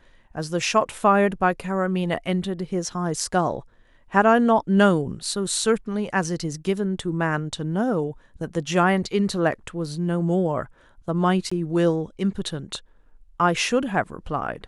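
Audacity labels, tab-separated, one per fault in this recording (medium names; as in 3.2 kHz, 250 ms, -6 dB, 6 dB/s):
11.500000	11.520000	dropout 15 ms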